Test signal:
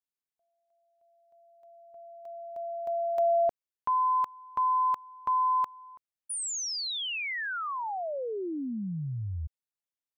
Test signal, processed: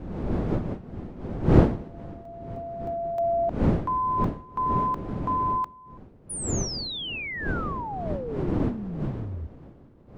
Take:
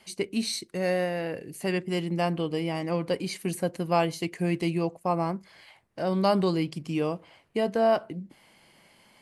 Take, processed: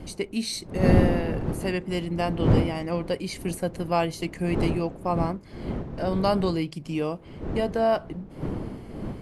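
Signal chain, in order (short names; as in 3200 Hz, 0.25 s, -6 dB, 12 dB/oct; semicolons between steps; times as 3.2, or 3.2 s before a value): wind noise 280 Hz -29 dBFS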